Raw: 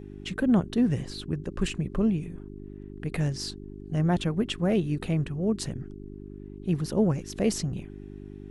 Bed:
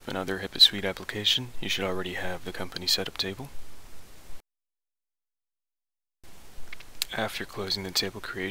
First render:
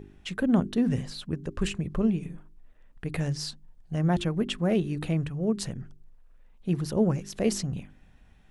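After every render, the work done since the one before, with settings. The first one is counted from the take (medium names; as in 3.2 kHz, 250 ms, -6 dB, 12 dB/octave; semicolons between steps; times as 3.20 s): de-hum 50 Hz, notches 8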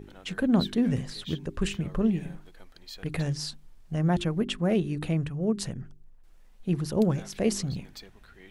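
add bed -19.5 dB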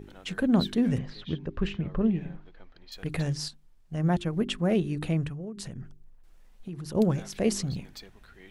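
0.98–2.92 s: distance through air 220 m; 3.48–4.33 s: upward expansion, over -37 dBFS; 5.32–6.95 s: compression 8:1, threshold -34 dBFS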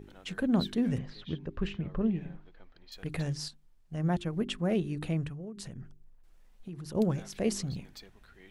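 trim -4 dB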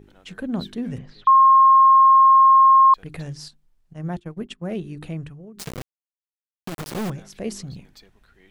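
1.27–2.94 s: bleep 1.07 kHz -9 dBFS; 3.93–4.81 s: gate -36 dBFS, range -17 dB; 5.59–7.10 s: companded quantiser 2-bit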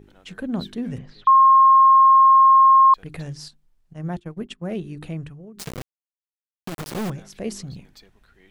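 no audible change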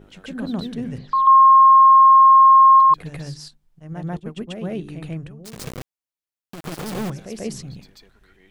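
reverse echo 140 ms -5 dB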